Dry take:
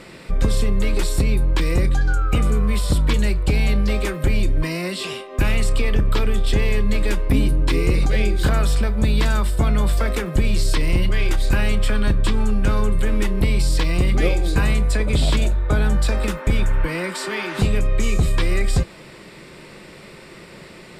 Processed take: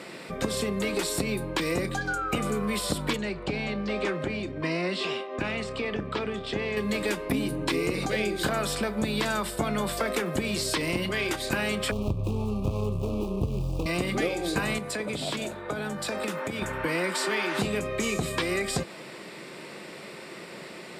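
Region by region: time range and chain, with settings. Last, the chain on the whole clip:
3.16–6.77 compressor, threshold -17 dBFS + air absorption 120 m
11.91–13.86 median filter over 41 samples + elliptic band-stop 1200–2500 Hz + resonant low shelf 140 Hz +11 dB, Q 1.5
14.78–16.62 HPF 72 Hz 24 dB/oct + compressor 4:1, threshold -26 dBFS
whole clip: HPF 200 Hz 12 dB/oct; bell 700 Hz +2.5 dB 0.39 oct; compressor, threshold -23 dBFS

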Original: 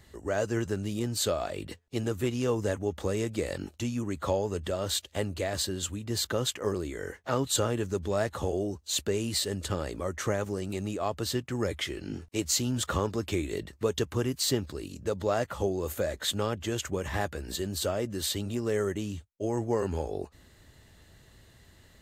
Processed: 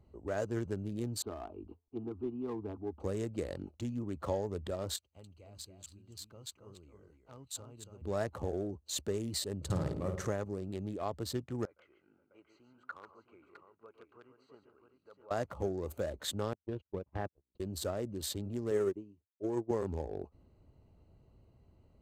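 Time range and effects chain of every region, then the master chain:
1.22–3 LPF 2700 Hz 24 dB/oct + fixed phaser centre 540 Hz, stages 6
4.96–8.02 passive tone stack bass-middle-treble 5-5-5 + echo 0.278 s -6 dB
9.61–10.27 bell 140 Hz +15 dB 0.54 oct + flutter echo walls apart 9.3 m, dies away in 0.66 s
11.65–15.31 band-pass 1500 Hz, Q 4.1 + tapped delay 0.114/0.141/0.535/0.658 s -17.5/-9/-19/-8.5 dB
16.53–17.6 gate -32 dBFS, range -48 dB + air absorption 370 m
18.71–19.71 HPF 96 Hz + small resonant body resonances 360/1000 Hz, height 8 dB, ringing for 20 ms + upward expander 2.5:1, over -37 dBFS
whole clip: Wiener smoothing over 25 samples; dynamic EQ 2800 Hz, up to -4 dB, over -48 dBFS, Q 1.4; gain -5.5 dB

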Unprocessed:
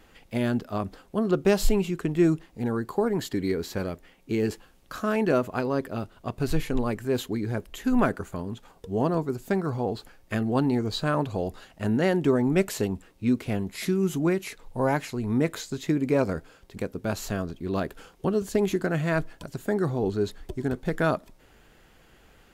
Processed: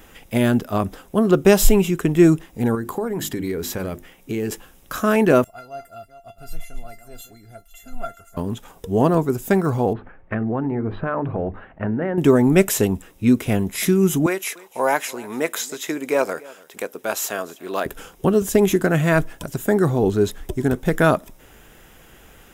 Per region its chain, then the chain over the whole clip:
2.75–4.52 notches 50/100/150/200/250/300/350 Hz + compressor 2.5:1, threshold -32 dBFS
5.44–8.37 reverse delay 0.253 s, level -12 dB + resonator 690 Hz, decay 0.15 s, mix 100%
9.93–12.18 inverse Chebyshev low-pass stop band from 6400 Hz, stop band 60 dB + notches 50/100/150/200/250/300/350/400 Hz + compressor, threshold -27 dBFS
14.26–17.86 HPF 520 Hz + echo 0.292 s -22 dB
whole clip: high shelf 8800 Hz +11.5 dB; notch 4400 Hz, Q 5.3; gain +8 dB

